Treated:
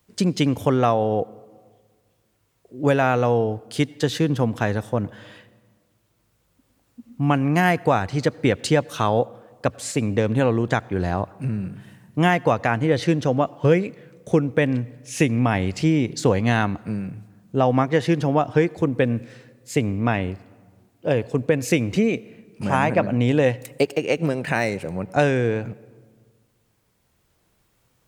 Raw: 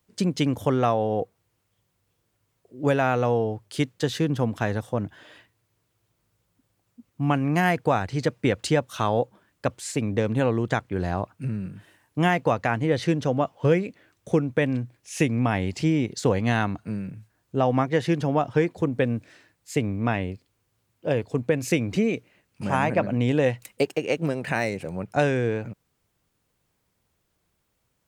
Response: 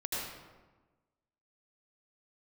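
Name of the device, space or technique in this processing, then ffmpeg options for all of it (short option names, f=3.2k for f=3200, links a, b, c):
ducked reverb: -filter_complex "[0:a]asplit=3[a][b][c];[1:a]atrim=start_sample=2205[d];[b][d]afir=irnorm=-1:irlink=0[e];[c]apad=whole_len=1238245[f];[e][f]sidechaincompress=threshold=-40dB:ratio=16:attack=22:release=1370,volume=-3.5dB[g];[a][g]amix=inputs=2:normalize=0,volume=3dB"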